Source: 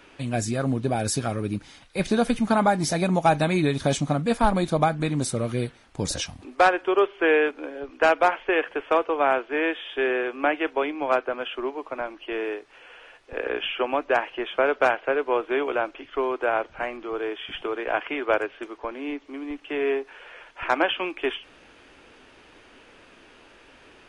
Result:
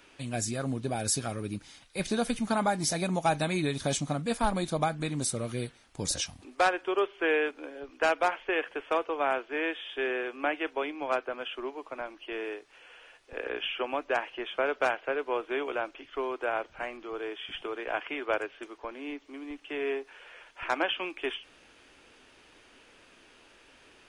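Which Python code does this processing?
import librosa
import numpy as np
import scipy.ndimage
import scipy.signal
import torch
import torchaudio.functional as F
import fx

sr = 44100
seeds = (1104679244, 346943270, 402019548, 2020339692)

y = fx.high_shelf(x, sr, hz=3600.0, db=9.0)
y = F.gain(torch.from_numpy(y), -7.5).numpy()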